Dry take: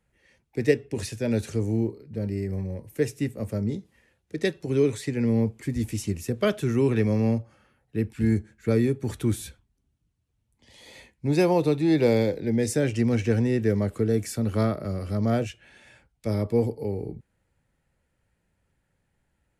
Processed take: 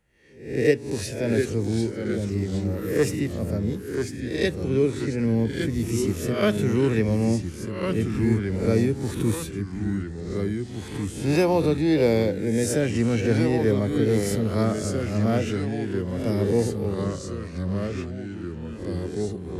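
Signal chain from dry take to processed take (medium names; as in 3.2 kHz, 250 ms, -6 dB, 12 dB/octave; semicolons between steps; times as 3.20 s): reverse spectral sustain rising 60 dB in 0.53 s; 2.54–3.16 s: waveshaping leveller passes 1; 4.67–5.17 s: low-pass 4.3 kHz -> 2.2 kHz 6 dB/octave; ever faster or slower copies 618 ms, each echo -2 st, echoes 3, each echo -6 dB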